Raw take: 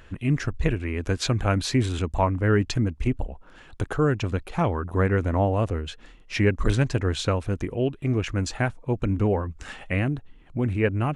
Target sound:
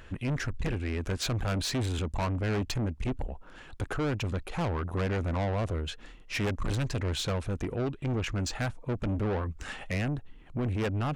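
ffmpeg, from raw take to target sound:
-filter_complex "[0:a]asettb=1/sr,asplit=3[a][b][c];[a]atrim=end=7.854[d];[b]atrim=start=7.85:end=8.57,asetpts=PTS-STARTPTS,afade=t=in:d=0.004:c=qsin,afade=t=out:st=0.716:d=0.004:c=qsin,lowpass=f=8.7k:w=0.5412,lowpass=f=8.7k:w=1.3066[e];[c]atrim=start=8.566[f];[d][e]acrossfade=d=0.004:c1=hsin:c2=qsin[g];[g][f]acrossfade=d=0.004:c1=qsin:c2=hsin,asoftclip=type=tanh:threshold=-26.5dB"

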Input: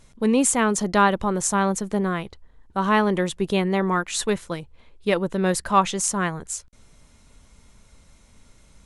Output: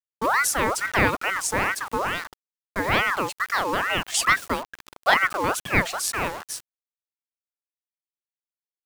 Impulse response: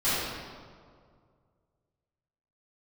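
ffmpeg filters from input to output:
-filter_complex "[0:a]asettb=1/sr,asplit=3[a][b][c];[a]atrim=end=4.144[d];[b]atrim=start=4.14:end=5.33,asetpts=PTS-STARTPTS,afade=t=in:d=0.004:c=qsin,afade=t=out:st=1.186:d=0.004:c=qsin,acontrast=60[e];[c]atrim=start=5.326[f];[d][e]acrossfade=d=0.004:c1=hsin:c2=qsin[g];[g][f]acrossfade=d=0.004:c1=qsin:c2=hsin,acrusher=bits=5:mix=0:aa=0.000001,aeval=exprs='val(0)*sin(2*PI*1200*n/s+1200*0.45/2.3*sin(2*PI*2.3*n/s))':c=same"

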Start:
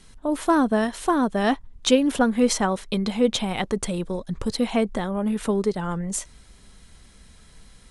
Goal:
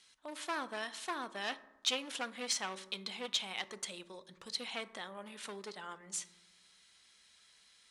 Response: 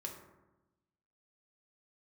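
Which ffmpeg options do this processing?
-filter_complex "[0:a]aeval=exprs='clip(val(0),-1,0.0944)':c=same,bandpass=f=3.8k:t=q:w=0.79:csg=0,asplit=2[a][b];[1:a]atrim=start_sample=2205[c];[b][c]afir=irnorm=-1:irlink=0,volume=-5.5dB[d];[a][d]amix=inputs=2:normalize=0,volume=-7.5dB"

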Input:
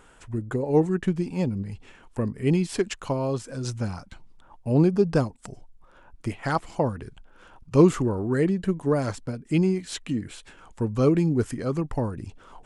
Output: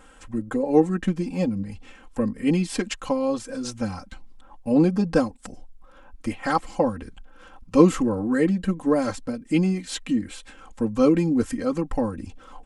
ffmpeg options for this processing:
-af "aecho=1:1:3.8:0.95"

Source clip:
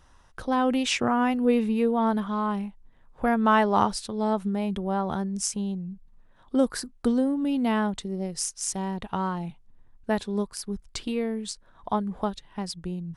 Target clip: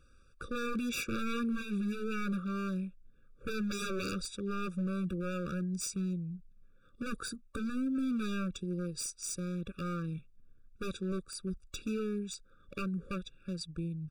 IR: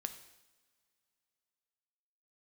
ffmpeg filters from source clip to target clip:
-af "asetrate=41145,aresample=44100,aeval=exprs='0.0631*(abs(mod(val(0)/0.0631+3,4)-2)-1)':c=same,afftfilt=real='re*eq(mod(floor(b*sr/1024/560),2),0)':imag='im*eq(mod(floor(b*sr/1024/560),2),0)':win_size=1024:overlap=0.75,volume=-4.5dB"

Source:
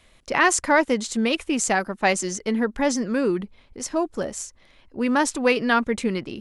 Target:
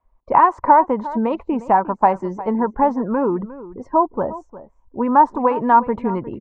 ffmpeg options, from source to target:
-filter_complex "[0:a]afftdn=nr=21:nf=-41,adynamicequalizer=threshold=0.00631:dfrequency=110:dqfactor=1.4:tfrequency=110:tqfactor=1.4:attack=5:release=100:ratio=0.375:range=2.5:mode=boostabove:tftype=bell,acompressor=threshold=-19dB:ratio=6,lowpass=f=960:t=q:w=7.5,asplit=2[a][b];[b]adelay=355.7,volume=-16dB,highshelf=f=4k:g=-8[c];[a][c]amix=inputs=2:normalize=0,volume=2.5dB"

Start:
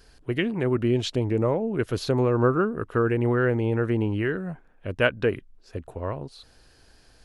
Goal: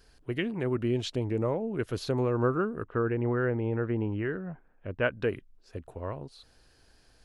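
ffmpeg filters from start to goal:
-filter_complex "[0:a]asettb=1/sr,asplit=3[a][b][c];[a]atrim=end=2.834[d];[b]atrim=start=2.83:end=5.11,asetpts=PTS-STARTPTS,afade=t=in:d=0.004:c=qsin,afade=t=out:st=2.276:d=0.004:c=qsin,lowpass=2.3k[e];[c]atrim=start=5.106[f];[d][e]acrossfade=d=0.004:c1=hsin:c2=qsin[g];[g][f]acrossfade=d=0.004:c1=qsin:c2=hsin,volume=-5.5dB"

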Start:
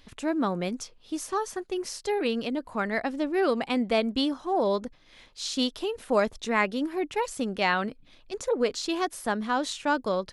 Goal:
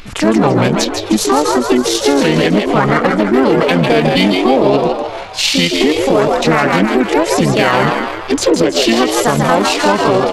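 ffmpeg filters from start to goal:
-filter_complex "[0:a]equalizer=f=250:w=4.7:g=-4,asplit=3[a][b][c];[b]asetrate=55563,aresample=44100,atempo=0.793701,volume=-10dB[d];[c]asetrate=66075,aresample=44100,atempo=0.66742,volume=-2dB[e];[a][d][e]amix=inputs=3:normalize=0,acompressor=threshold=-30dB:ratio=3,aeval=exprs='0.0891*(cos(1*acos(clip(val(0)/0.0891,-1,1)))-cos(1*PI/2))+0.00398*(cos(2*acos(clip(val(0)/0.0891,-1,1)))-cos(2*PI/2))+0.000501*(cos(4*acos(clip(val(0)/0.0891,-1,1)))-cos(4*PI/2))+0.00398*(cos(7*acos(clip(val(0)/0.0891,-1,1)))-cos(7*PI/2))':c=same,asplit=7[f][g][h][i][j][k][l];[g]adelay=154,afreqshift=130,volume=-6dB[m];[h]adelay=308,afreqshift=260,volume=-12dB[n];[i]adelay=462,afreqshift=390,volume=-18dB[o];[j]adelay=616,afreqshift=520,volume=-24.1dB[p];[k]adelay=770,afreqshift=650,volume=-30.1dB[q];[l]adelay=924,afreqshift=780,volume=-36.1dB[r];[f][m][n][o][p][q][r]amix=inputs=7:normalize=0,asetrate=30296,aresample=44100,atempo=1.45565,alimiter=level_in=23dB:limit=-1dB:release=50:level=0:latency=1,volume=-1dB"

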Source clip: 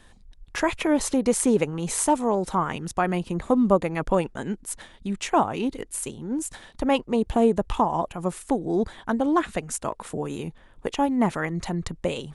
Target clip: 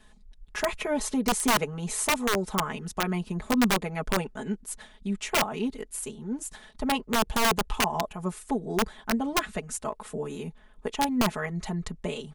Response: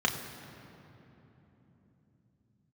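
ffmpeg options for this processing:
-af "aecho=1:1:4.7:0.93,aeval=exprs='(mod(3.16*val(0)+1,2)-1)/3.16':c=same,volume=-6.5dB"

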